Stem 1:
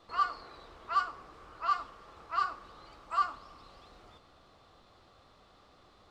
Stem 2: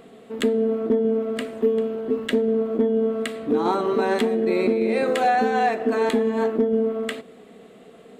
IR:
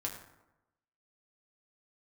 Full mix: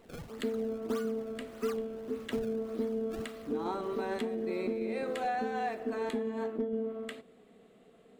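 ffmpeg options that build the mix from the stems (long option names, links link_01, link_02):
-filter_complex "[0:a]equalizer=frequency=500:width_type=o:width=1:gain=6,equalizer=frequency=1000:width_type=o:width=1:gain=-11,equalizer=frequency=2000:width_type=o:width=1:gain=10,equalizer=frequency=4000:width_type=o:width=1:gain=5,acompressor=threshold=-39dB:ratio=6,acrusher=samples=26:mix=1:aa=0.000001:lfo=1:lforange=41.6:lforate=1.7,volume=-3.5dB[link_01];[1:a]lowshelf=frequency=76:gain=10,volume=-13.5dB[link_02];[link_01][link_02]amix=inputs=2:normalize=0"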